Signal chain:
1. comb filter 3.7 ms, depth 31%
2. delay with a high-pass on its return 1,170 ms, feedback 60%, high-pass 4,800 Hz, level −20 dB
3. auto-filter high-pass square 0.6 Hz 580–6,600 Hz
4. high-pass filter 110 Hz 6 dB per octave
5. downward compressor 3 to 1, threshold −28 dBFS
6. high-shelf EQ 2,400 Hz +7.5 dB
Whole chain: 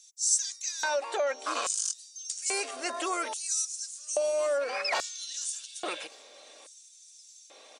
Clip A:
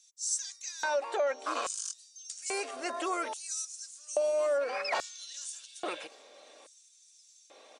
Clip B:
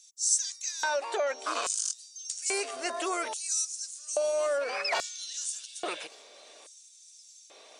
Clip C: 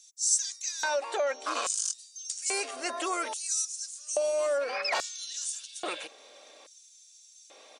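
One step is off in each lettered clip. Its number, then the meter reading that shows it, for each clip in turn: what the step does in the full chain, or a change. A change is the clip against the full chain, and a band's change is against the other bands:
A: 6, 8 kHz band −5.5 dB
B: 1, change in momentary loudness spread −7 LU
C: 2, change in momentary loudness spread −9 LU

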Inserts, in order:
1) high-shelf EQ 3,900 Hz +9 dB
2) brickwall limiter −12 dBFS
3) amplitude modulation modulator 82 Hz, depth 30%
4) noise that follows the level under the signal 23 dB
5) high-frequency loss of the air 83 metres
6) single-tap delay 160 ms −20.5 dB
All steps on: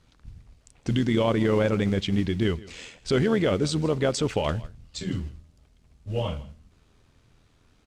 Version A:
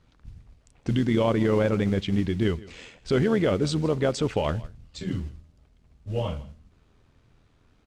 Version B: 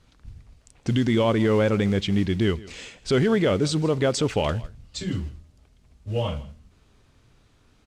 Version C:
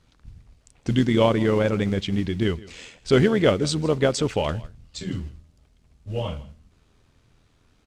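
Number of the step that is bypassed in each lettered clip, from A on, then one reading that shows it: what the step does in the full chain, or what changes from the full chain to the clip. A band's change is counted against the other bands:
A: 1, 8 kHz band −4.0 dB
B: 3, change in momentary loudness spread +1 LU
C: 2, change in crest factor +5.5 dB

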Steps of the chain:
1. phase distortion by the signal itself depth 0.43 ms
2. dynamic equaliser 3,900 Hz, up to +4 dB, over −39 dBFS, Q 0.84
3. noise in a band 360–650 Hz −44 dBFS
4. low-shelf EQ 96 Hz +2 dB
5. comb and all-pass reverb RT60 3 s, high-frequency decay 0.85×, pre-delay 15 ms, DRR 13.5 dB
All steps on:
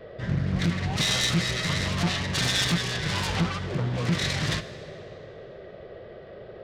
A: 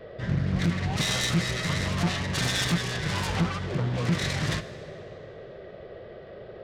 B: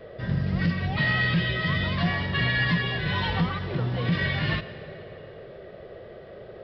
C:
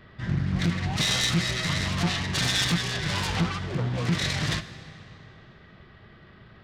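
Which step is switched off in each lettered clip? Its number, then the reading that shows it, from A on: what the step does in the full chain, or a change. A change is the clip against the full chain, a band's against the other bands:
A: 2, change in momentary loudness spread −2 LU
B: 1, 4 kHz band −6.0 dB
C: 3, 500 Hz band −3.0 dB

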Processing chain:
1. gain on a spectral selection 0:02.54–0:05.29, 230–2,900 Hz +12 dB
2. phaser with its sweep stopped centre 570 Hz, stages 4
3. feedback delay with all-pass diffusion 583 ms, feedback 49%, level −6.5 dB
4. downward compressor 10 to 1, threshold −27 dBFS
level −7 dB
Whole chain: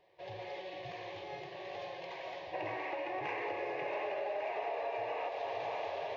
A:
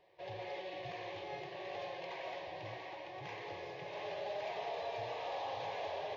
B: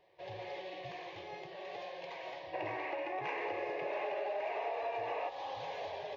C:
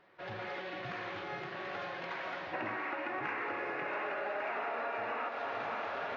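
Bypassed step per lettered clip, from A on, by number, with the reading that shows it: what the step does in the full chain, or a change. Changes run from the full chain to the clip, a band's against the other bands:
1, 125 Hz band +5.5 dB
3, change in momentary loudness spread +1 LU
2, 500 Hz band −5.0 dB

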